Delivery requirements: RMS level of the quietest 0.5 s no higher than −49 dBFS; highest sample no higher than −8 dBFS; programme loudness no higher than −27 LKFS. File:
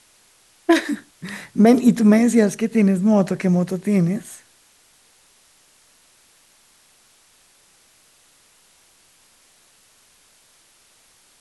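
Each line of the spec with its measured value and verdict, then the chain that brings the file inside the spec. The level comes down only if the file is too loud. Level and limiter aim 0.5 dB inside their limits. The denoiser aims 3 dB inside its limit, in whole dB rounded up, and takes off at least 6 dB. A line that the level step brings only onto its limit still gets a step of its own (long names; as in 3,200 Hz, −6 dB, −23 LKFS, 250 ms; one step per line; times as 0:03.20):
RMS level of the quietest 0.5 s −56 dBFS: in spec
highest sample −4.0 dBFS: out of spec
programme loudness −18.0 LKFS: out of spec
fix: level −9.5 dB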